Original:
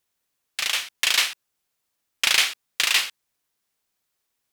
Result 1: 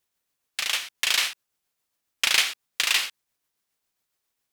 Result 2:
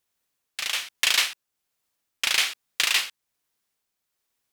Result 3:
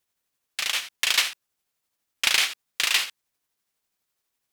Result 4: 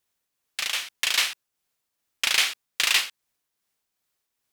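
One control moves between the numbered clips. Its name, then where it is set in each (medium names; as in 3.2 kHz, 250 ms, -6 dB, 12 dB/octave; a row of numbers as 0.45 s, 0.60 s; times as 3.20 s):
tremolo, rate: 7.3 Hz, 1.2 Hz, 12 Hz, 2.5 Hz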